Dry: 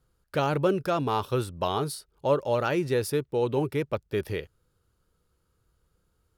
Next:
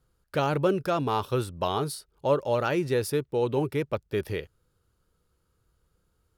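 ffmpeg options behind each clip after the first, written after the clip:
-af anull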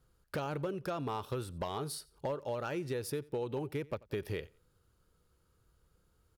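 -af "acompressor=threshold=0.0224:ratio=10,volume=26.6,asoftclip=hard,volume=0.0376,aecho=1:1:89|178:0.0668|0.0174"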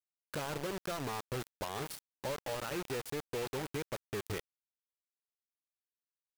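-af "acrusher=bits=5:mix=0:aa=0.000001,volume=0.708"

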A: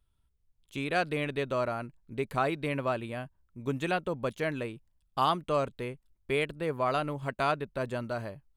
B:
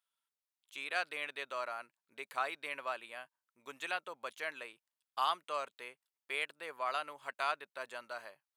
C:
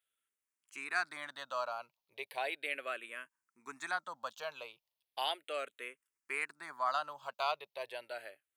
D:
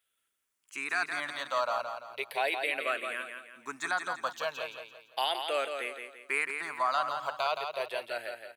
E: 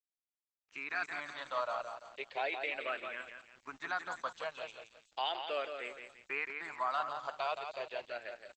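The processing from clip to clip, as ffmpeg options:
-af "highpass=980,volume=0.708"
-filter_complex "[0:a]asplit=2[s0][s1];[s1]afreqshift=-0.36[s2];[s0][s2]amix=inputs=2:normalize=1,volume=1.58"
-filter_complex "[0:a]alimiter=level_in=1.33:limit=0.0631:level=0:latency=1:release=29,volume=0.75,asplit=2[s0][s1];[s1]aecho=0:1:170|340|510|680|850:0.473|0.185|0.072|0.0281|0.0109[s2];[s0][s2]amix=inputs=2:normalize=0,volume=2.37"
-filter_complex "[0:a]aeval=exprs='val(0)*gte(abs(val(0)),0.00316)':c=same,acrossover=split=5700[s0][s1];[s1]adelay=310[s2];[s0][s2]amix=inputs=2:normalize=0,volume=0.562" -ar 48000 -c:a libopus -b:a 12k

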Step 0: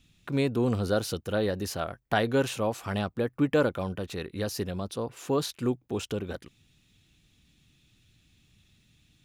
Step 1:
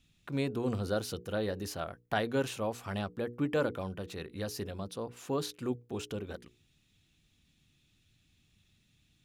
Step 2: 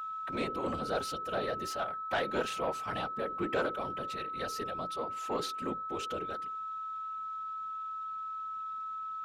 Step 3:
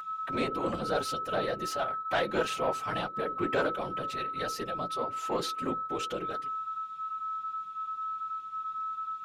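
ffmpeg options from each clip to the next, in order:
-af "bandreject=f=60:t=h:w=6,bandreject=f=120:t=h:w=6,bandreject=f=180:t=h:w=6,bandreject=f=240:t=h:w=6,bandreject=f=300:t=h:w=6,bandreject=f=360:t=h:w=6,bandreject=f=420:t=h:w=6,bandreject=f=480:t=h:w=6,volume=0.531"
-filter_complex "[0:a]afftfilt=real='hypot(re,im)*cos(2*PI*random(0))':imag='hypot(re,im)*sin(2*PI*random(1))':win_size=512:overlap=0.75,aeval=exprs='val(0)+0.00501*sin(2*PI*1300*n/s)':c=same,asplit=2[s0][s1];[s1]highpass=f=720:p=1,volume=6.31,asoftclip=type=tanh:threshold=0.1[s2];[s0][s2]amix=inputs=2:normalize=0,lowpass=f=3700:p=1,volume=0.501"
-af "flanger=delay=5.7:depth=2:regen=-35:speed=1.3:shape=sinusoidal,volume=2.24"

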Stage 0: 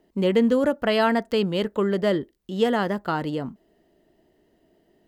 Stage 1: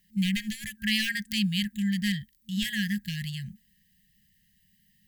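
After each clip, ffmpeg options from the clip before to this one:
-af "aeval=exprs='clip(val(0),-1,0.15)':c=same,aemphasis=mode=production:type=50kf,afftfilt=real='re*(1-between(b*sr/4096,220,1600))':imag='im*(1-between(b*sr/4096,220,1600))':win_size=4096:overlap=0.75"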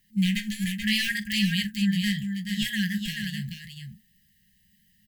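-af "flanger=delay=8.1:depth=8.4:regen=-34:speed=0.77:shape=sinusoidal,aecho=1:1:43|431:0.158|0.501,volume=1.78"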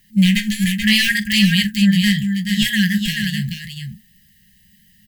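-af "acontrast=84,volume=1.5"

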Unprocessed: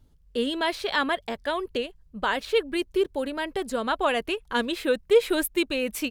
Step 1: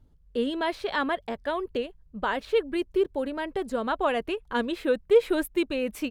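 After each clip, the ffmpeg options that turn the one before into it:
-af "highshelf=f=2300:g=-10"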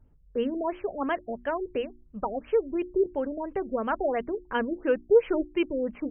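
-af "bandreject=f=60:t=h:w=6,bandreject=f=120:t=h:w=6,bandreject=f=180:t=h:w=6,bandreject=f=240:t=h:w=6,bandreject=f=300:t=h:w=6,bandreject=f=360:t=h:w=6,afftfilt=real='re*lt(b*sr/1024,700*pow(3300/700,0.5+0.5*sin(2*PI*2.9*pts/sr)))':imag='im*lt(b*sr/1024,700*pow(3300/700,0.5+0.5*sin(2*PI*2.9*pts/sr)))':win_size=1024:overlap=0.75"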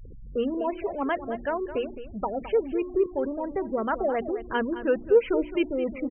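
-af "aeval=exprs='val(0)+0.5*0.0141*sgn(val(0))':c=same,afftfilt=real='re*gte(hypot(re,im),0.0158)':imag='im*gte(hypot(re,im),0.0158)':win_size=1024:overlap=0.75,aecho=1:1:214:0.237"

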